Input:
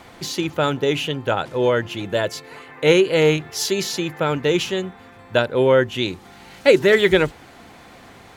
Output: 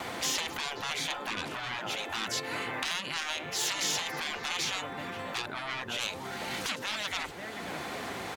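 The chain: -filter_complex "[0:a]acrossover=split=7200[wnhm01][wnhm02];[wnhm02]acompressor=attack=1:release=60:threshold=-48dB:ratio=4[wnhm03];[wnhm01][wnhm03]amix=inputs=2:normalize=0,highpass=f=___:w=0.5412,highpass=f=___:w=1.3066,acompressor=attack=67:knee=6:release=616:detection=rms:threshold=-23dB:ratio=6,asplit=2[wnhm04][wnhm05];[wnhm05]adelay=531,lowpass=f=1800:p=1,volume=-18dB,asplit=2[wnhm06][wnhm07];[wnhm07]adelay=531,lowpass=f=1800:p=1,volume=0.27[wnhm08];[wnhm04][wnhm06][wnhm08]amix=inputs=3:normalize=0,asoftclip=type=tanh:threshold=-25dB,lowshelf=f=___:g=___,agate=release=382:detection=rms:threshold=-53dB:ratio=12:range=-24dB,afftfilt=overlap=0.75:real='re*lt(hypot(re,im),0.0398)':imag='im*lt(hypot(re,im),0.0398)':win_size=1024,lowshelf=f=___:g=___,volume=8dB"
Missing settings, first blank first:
46, 46, 290, -4, 87, -8.5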